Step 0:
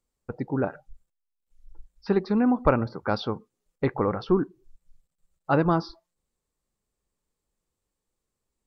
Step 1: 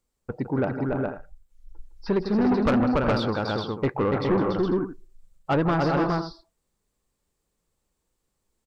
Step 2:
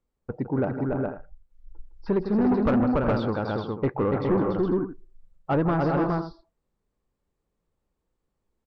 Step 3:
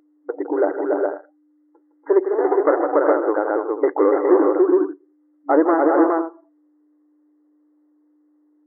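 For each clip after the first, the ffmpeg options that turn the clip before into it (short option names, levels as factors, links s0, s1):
-filter_complex "[0:a]asplit=2[s0][s1];[s1]aecho=0:1:160|286|367|414|496:0.251|0.631|0.224|0.596|0.168[s2];[s0][s2]amix=inputs=2:normalize=0,asoftclip=type=tanh:threshold=0.106,volume=1.41"
-af "lowpass=f=1300:p=1"
-af "tiltshelf=f=970:g=3,aeval=exprs='val(0)+0.00282*(sin(2*PI*60*n/s)+sin(2*PI*2*60*n/s)/2+sin(2*PI*3*60*n/s)/3+sin(2*PI*4*60*n/s)/4+sin(2*PI*5*60*n/s)/5)':c=same,afftfilt=real='re*between(b*sr/4096,290,2100)':imag='im*between(b*sr/4096,290,2100)':win_size=4096:overlap=0.75,volume=2.51"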